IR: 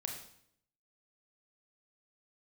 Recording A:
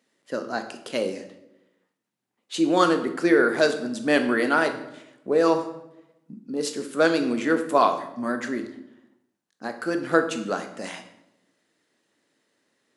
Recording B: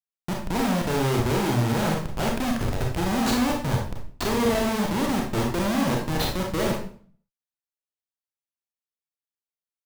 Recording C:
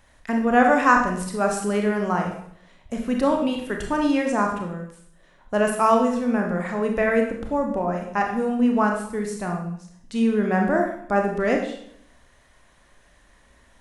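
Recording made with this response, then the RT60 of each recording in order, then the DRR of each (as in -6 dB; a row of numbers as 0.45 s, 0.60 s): C; 0.90 s, 0.50 s, 0.70 s; 6.5 dB, -0.5 dB, 1.5 dB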